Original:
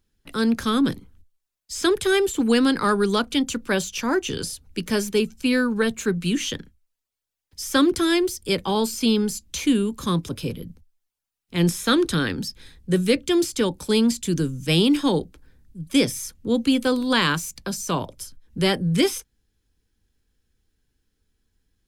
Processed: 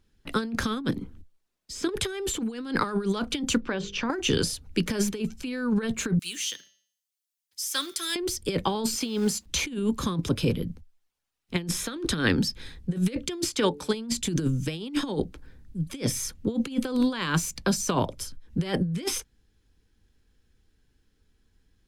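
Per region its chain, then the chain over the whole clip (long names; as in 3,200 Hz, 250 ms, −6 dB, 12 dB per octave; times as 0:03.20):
0:00.90–0:01.89: downward compressor 3 to 1, threshold −39 dBFS + parametric band 270 Hz +8.5 dB 2 octaves
0:03.60–0:04.10: high-frequency loss of the air 160 metres + mains-hum notches 50/100/150/200/250/300/350/400/450/500 Hz + downward compressor 16 to 1, threshold −29 dBFS
0:06.19–0:08.16: one scale factor per block 7 bits + first difference + hum removal 194.4 Hz, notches 34
0:08.96–0:09.46: log-companded quantiser 6 bits + high-pass filter 180 Hz 6 dB per octave
0:13.49–0:13.94: low-pass filter 1,600 Hz 6 dB per octave + spectral tilt +3 dB per octave + hum removal 145.3 Hz, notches 3
whole clip: high-shelf EQ 7,900 Hz −10 dB; compressor whose output falls as the input rises −25 dBFS, ratio −0.5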